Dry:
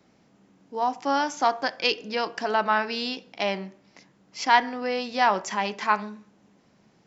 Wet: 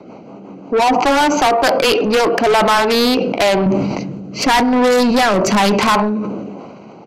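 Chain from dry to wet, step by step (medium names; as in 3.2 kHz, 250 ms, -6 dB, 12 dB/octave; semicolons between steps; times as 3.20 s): local Wiener filter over 25 samples; 3.66–5.95 s: tone controls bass +14 dB, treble +7 dB; compression 5:1, threshold -25 dBFS, peak gain reduction 11.5 dB; rotary cabinet horn 5.5 Hz, later 1 Hz, at 1.27 s; overdrive pedal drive 32 dB, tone 6.7 kHz, clips at -14.5 dBFS; resampled via 32 kHz; decay stretcher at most 31 dB/s; trim +9 dB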